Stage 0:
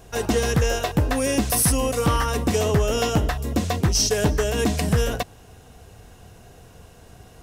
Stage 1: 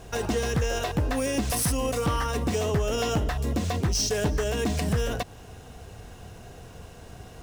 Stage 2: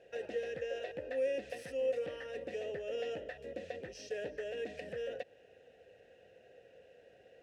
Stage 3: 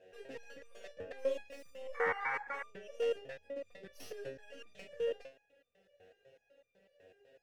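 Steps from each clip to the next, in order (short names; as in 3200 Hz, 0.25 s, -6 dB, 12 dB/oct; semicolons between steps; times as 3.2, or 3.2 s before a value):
median filter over 3 samples; in parallel at -1 dB: compressor, threshold -28 dBFS, peak gain reduction 12 dB; on the sum: limiter -16 dBFS, peak gain reduction 6 dB; gain -3 dB
vowel filter e; gain -1.5 dB
tracing distortion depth 0.086 ms; painted sound noise, 1.94–2.64, 720–2300 Hz -34 dBFS; stepped resonator 8 Hz 93–1200 Hz; gain +8.5 dB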